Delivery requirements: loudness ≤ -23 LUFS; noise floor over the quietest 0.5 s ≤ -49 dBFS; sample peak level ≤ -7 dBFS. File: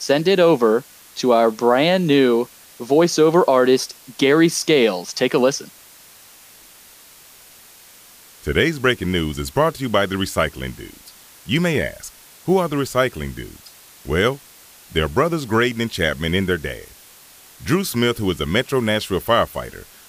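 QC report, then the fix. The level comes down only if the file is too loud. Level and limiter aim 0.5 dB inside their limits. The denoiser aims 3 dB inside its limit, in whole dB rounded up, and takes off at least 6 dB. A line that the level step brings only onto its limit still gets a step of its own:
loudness -18.5 LUFS: fail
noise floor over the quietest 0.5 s -46 dBFS: fail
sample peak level -4.5 dBFS: fail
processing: trim -5 dB

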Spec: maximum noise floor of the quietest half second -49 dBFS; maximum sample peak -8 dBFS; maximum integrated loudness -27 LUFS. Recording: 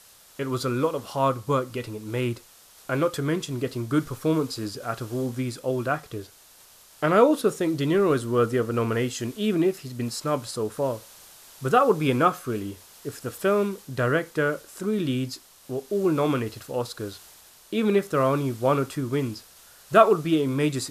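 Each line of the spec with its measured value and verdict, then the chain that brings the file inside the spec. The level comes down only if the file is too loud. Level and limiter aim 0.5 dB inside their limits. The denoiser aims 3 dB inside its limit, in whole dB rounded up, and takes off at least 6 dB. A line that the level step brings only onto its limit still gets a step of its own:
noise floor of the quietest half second -53 dBFS: pass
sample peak -4.5 dBFS: fail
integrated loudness -25.5 LUFS: fail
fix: trim -2 dB; peak limiter -8.5 dBFS

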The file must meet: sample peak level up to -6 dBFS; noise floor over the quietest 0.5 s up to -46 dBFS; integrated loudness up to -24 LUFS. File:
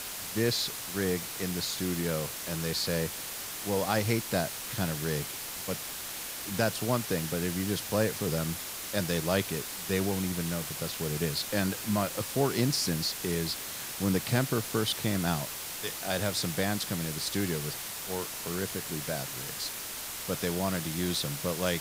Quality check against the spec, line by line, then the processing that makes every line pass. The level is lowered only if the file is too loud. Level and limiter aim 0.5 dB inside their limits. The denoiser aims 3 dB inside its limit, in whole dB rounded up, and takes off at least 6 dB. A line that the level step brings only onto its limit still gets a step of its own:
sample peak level -13.0 dBFS: pass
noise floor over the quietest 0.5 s -39 dBFS: fail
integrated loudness -31.0 LUFS: pass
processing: noise reduction 10 dB, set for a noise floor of -39 dBFS

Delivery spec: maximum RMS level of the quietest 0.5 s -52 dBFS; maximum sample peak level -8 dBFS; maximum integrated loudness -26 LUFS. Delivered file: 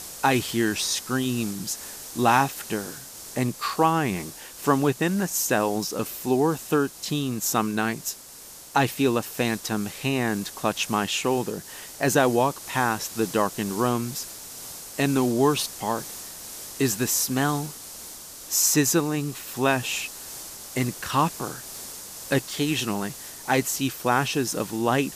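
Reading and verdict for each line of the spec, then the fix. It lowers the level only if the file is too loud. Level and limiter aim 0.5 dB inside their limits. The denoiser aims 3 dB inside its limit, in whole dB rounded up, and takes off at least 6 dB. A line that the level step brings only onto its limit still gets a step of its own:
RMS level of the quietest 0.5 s -44 dBFS: fail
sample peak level -5.5 dBFS: fail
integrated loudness -25.0 LUFS: fail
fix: noise reduction 10 dB, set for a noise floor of -44 dBFS; trim -1.5 dB; peak limiter -8.5 dBFS

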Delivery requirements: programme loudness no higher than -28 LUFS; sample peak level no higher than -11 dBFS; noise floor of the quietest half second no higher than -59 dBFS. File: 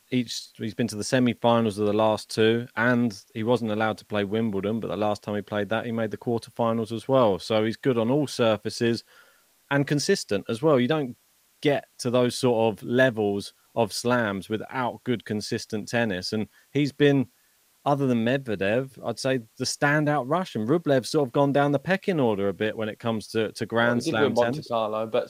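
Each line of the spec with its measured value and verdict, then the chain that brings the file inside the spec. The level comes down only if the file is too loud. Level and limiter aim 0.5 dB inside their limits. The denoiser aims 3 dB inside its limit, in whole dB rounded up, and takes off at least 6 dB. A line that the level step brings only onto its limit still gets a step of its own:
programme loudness -25.0 LUFS: fail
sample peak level -6.0 dBFS: fail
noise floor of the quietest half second -63 dBFS: pass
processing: trim -3.5 dB; peak limiter -11.5 dBFS

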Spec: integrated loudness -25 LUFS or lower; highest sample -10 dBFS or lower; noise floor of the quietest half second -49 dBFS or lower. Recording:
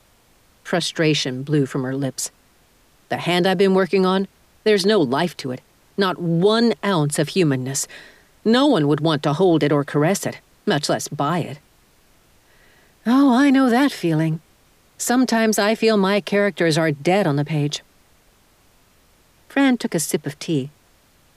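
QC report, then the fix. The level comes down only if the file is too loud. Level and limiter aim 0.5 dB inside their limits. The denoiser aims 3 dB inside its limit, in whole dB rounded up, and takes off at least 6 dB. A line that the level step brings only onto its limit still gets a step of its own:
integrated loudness -19.5 LUFS: fail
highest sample -5.5 dBFS: fail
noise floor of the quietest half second -56 dBFS: pass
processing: trim -6 dB

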